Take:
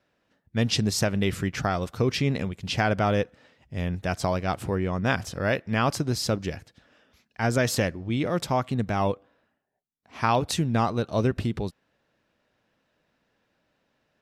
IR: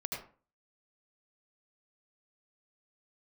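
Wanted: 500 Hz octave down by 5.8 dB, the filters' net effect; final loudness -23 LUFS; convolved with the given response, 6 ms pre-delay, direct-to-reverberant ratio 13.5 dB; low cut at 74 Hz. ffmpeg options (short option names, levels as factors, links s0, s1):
-filter_complex "[0:a]highpass=74,equalizer=f=500:t=o:g=-7.5,asplit=2[s0][s1];[1:a]atrim=start_sample=2205,adelay=6[s2];[s1][s2]afir=irnorm=-1:irlink=0,volume=0.168[s3];[s0][s3]amix=inputs=2:normalize=0,volume=1.78"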